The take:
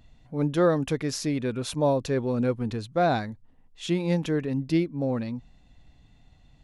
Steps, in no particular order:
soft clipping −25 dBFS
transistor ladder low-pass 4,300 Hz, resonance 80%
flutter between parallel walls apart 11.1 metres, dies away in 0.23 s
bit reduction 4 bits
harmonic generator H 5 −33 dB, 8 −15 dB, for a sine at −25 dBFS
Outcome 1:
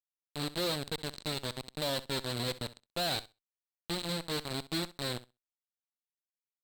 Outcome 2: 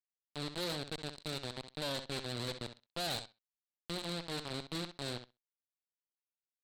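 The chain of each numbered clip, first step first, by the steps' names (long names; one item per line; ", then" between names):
bit reduction, then transistor ladder low-pass, then soft clipping, then harmonic generator, then flutter between parallel walls
bit reduction, then flutter between parallel walls, then soft clipping, then transistor ladder low-pass, then harmonic generator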